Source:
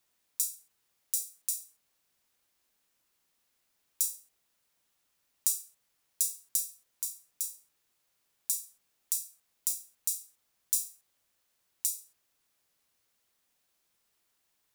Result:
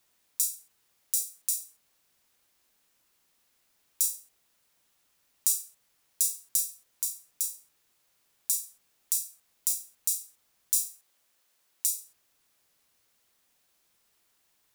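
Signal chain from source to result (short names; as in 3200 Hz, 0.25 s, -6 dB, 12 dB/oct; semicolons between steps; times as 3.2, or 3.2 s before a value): 10.82–11.87 HPF 260 Hz 6 dB/oct; in parallel at +0.5 dB: limiter -13 dBFS, peak gain reduction 10.5 dB; on the sum: gain -1 dB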